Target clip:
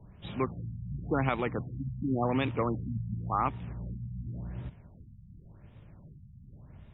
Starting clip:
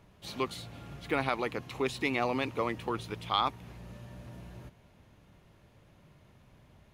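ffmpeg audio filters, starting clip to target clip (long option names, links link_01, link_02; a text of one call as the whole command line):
ffmpeg -i in.wav -filter_complex "[0:a]bass=frequency=250:gain=10,treble=frequency=4000:gain=1,acrossover=split=130|4000[link_01][link_02][link_03];[link_02]acrusher=bits=3:mode=log:mix=0:aa=0.000001[link_04];[link_01][link_04][link_03]amix=inputs=3:normalize=0,afftfilt=real='re*lt(b*sr/1024,210*pow(3900/210,0.5+0.5*sin(2*PI*0.91*pts/sr)))':imag='im*lt(b*sr/1024,210*pow(3900/210,0.5+0.5*sin(2*PI*0.91*pts/sr)))':win_size=1024:overlap=0.75" out.wav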